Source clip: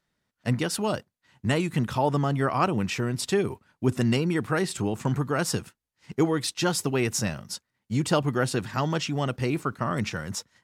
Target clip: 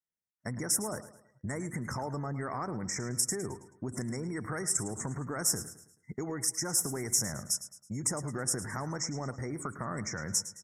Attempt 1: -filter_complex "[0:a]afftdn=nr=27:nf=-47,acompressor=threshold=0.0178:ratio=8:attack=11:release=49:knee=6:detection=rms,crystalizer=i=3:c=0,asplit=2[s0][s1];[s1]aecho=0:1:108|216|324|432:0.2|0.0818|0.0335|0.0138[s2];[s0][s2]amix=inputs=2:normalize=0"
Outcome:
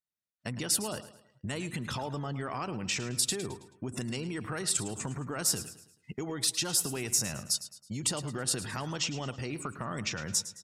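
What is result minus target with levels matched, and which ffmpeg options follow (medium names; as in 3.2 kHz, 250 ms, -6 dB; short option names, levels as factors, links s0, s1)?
4 kHz band +5.5 dB
-filter_complex "[0:a]afftdn=nr=27:nf=-47,acompressor=threshold=0.0178:ratio=8:attack=11:release=49:knee=6:detection=rms,asuperstop=centerf=3400:order=20:qfactor=1.1,crystalizer=i=3:c=0,asplit=2[s0][s1];[s1]aecho=0:1:108|216|324|432:0.2|0.0818|0.0335|0.0138[s2];[s0][s2]amix=inputs=2:normalize=0"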